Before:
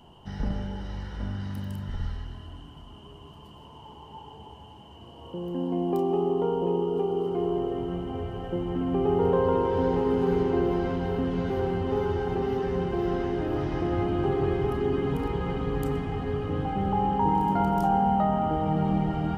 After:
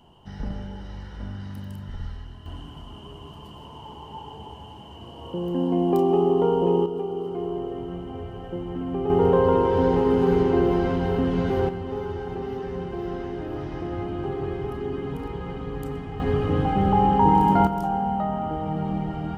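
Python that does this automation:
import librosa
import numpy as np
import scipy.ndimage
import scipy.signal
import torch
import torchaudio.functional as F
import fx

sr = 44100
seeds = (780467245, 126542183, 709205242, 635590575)

y = fx.gain(x, sr, db=fx.steps((0.0, -2.0), (2.46, 5.5), (6.86, -2.0), (9.1, 4.5), (11.69, -3.5), (16.2, 6.5), (17.67, -2.0)))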